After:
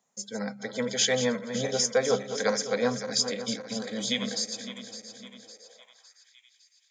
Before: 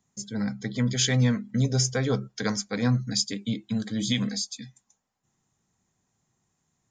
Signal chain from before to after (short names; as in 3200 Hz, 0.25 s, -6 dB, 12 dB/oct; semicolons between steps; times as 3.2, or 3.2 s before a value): regenerating reverse delay 0.279 s, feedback 68%, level -10 dB; resonant low shelf 400 Hz -9 dB, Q 3; high-pass sweep 230 Hz -> 2400 Hz, 5.39–6.37